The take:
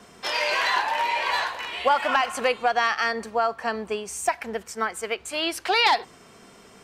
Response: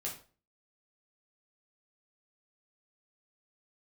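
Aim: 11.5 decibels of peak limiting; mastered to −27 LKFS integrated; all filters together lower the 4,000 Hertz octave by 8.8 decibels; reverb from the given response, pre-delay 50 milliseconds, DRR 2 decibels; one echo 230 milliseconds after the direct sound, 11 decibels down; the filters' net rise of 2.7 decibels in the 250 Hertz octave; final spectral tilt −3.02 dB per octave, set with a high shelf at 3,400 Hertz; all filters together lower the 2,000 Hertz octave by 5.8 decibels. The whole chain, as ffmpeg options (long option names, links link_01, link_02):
-filter_complex "[0:a]equalizer=frequency=250:width_type=o:gain=3.5,equalizer=frequency=2000:width_type=o:gain=-4,highshelf=frequency=3400:gain=-6.5,equalizer=frequency=4000:width_type=o:gain=-6,alimiter=limit=-22.5dB:level=0:latency=1,aecho=1:1:230:0.282,asplit=2[link_01][link_02];[1:a]atrim=start_sample=2205,adelay=50[link_03];[link_02][link_03]afir=irnorm=-1:irlink=0,volume=-2dB[link_04];[link_01][link_04]amix=inputs=2:normalize=0,volume=2.5dB"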